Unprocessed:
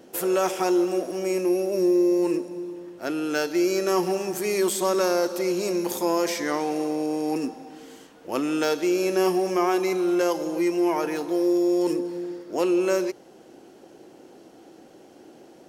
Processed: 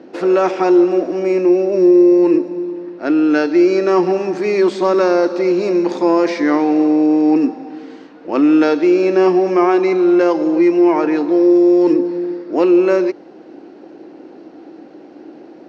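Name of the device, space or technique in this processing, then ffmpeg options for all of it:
guitar cabinet: -af "highpass=98,equalizer=frequency=120:width_type=q:width=4:gain=-10,equalizer=frequency=300:width_type=q:width=4:gain=8,equalizer=frequency=3200:width_type=q:width=4:gain=-9,lowpass=frequency=4200:width=0.5412,lowpass=frequency=4200:width=1.3066,volume=8dB"

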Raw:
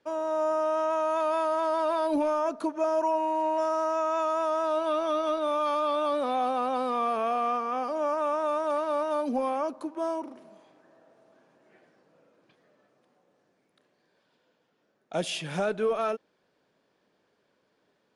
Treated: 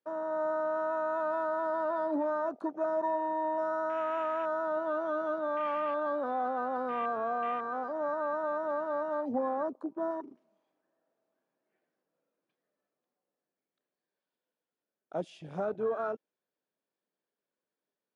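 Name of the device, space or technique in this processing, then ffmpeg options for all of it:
over-cleaned archive recording: -filter_complex "[0:a]highpass=160,lowpass=7600,afwtdn=0.0282,asettb=1/sr,asplit=3[link_01][link_02][link_03];[link_01]atrim=end=9.344[link_04];[link_02]atrim=start=9.34:end=10.11,asetpts=PTS-STARTPTS,afade=type=in:duration=0.004:curve=qsin,afade=type=out:start_time=0.766:duration=0.004:curve=qsin,tiltshelf=frequency=1100:gain=3.5[link_05];[link_03]atrim=start=10.106[link_06];[link_04][link_05]acrossfade=duration=0.004:curve1=hsin:curve2=qsin[link_07];[link_07][link_06]acrossfade=duration=0.004:curve1=qsin:curve2=hsin,volume=-4.5dB"

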